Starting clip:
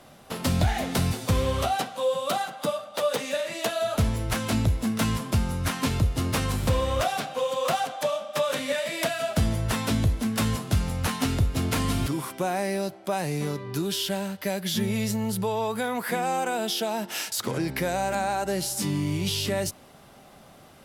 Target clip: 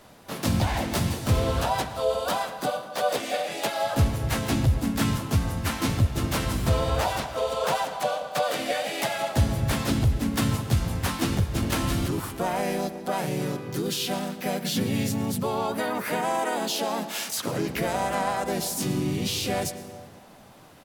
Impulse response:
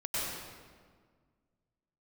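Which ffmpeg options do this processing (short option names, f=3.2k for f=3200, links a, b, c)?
-filter_complex "[0:a]asplit=2[a][b];[b]adelay=130,highpass=300,lowpass=3.4k,asoftclip=type=hard:threshold=-21dB,volume=-27dB[c];[a][c]amix=inputs=2:normalize=0,asplit=2[d][e];[1:a]atrim=start_sample=2205[f];[e][f]afir=irnorm=-1:irlink=0,volume=-18dB[g];[d][g]amix=inputs=2:normalize=0,asplit=3[h][i][j];[i]asetrate=37084,aresample=44100,atempo=1.18921,volume=-6dB[k];[j]asetrate=55563,aresample=44100,atempo=0.793701,volume=-2dB[l];[h][k][l]amix=inputs=3:normalize=0,volume=-3.5dB"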